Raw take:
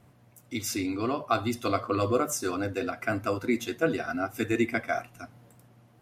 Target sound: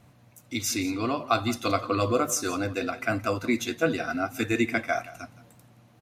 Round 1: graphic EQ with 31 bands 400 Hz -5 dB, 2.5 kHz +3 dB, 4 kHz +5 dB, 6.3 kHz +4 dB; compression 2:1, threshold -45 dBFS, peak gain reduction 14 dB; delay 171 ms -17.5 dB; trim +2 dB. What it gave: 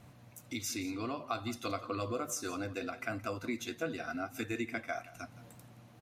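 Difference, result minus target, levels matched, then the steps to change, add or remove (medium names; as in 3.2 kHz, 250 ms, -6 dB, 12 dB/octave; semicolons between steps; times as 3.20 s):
compression: peak gain reduction +14 dB
remove: compression 2:1, threshold -45 dBFS, peak gain reduction 14 dB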